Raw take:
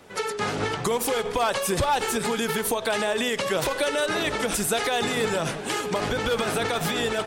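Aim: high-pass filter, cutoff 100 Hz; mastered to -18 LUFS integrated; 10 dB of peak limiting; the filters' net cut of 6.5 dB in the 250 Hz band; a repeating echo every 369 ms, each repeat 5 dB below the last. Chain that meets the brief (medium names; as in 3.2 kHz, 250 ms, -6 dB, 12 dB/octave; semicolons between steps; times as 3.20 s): high-pass 100 Hz; peaking EQ 250 Hz -8.5 dB; peak limiter -22.5 dBFS; feedback delay 369 ms, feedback 56%, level -5 dB; trim +11.5 dB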